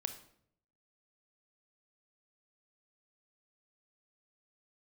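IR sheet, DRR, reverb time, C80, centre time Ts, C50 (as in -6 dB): 8.0 dB, 0.65 s, 14.5 dB, 10 ms, 11.0 dB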